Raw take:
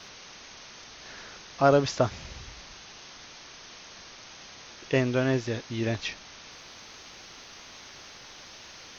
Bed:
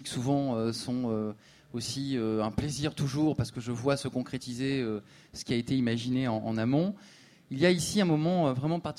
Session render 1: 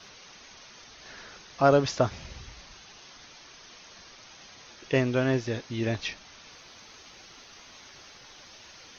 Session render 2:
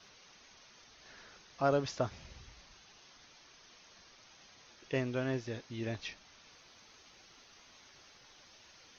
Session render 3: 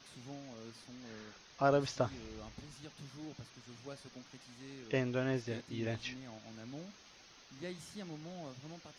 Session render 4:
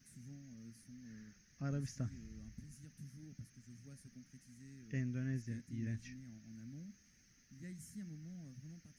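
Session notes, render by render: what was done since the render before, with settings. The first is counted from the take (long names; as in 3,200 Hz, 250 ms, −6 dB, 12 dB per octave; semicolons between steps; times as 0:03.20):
broadband denoise 6 dB, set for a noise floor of −48 dBFS
level −9.5 dB
mix in bed −21 dB
drawn EQ curve 230 Hz 0 dB, 370 Hz −17 dB, 1,000 Hz −29 dB, 1,800 Hz −7 dB, 3,600 Hz −24 dB, 6,500 Hz −3 dB, 11,000 Hz +3 dB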